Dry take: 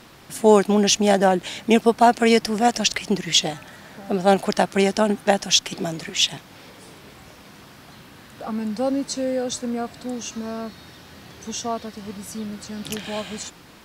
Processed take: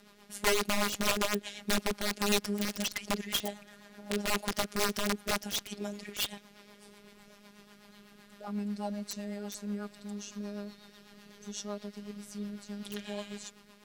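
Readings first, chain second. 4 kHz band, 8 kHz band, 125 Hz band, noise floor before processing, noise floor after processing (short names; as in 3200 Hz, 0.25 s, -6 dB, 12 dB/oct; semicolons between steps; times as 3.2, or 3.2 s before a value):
-11.5 dB, -10.5 dB, -12.0 dB, -47 dBFS, -58 dBFS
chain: robotiser 205 Hz; wrapped overs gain 12.5 dB; rotary speaker horn 8 Hz; gain -6.5 dB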